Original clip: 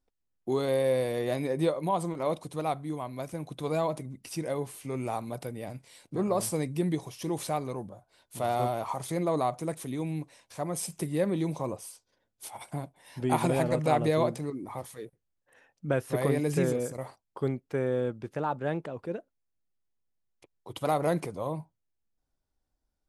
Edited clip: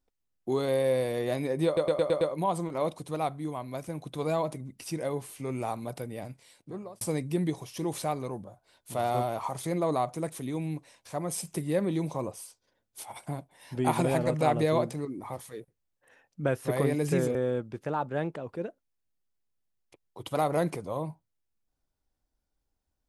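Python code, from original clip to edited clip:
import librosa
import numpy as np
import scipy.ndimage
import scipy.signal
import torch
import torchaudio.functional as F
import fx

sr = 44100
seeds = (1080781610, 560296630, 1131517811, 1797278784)

y = fx.edit(x, sr, fx.stutter(start_s=1.66, slice_s=0.11, count=6),
    fx.fade_out_span(start_s=5.67, length_s=0.79),
    fx.cut(start_s=16.8, length_s=1.05), tone=tone)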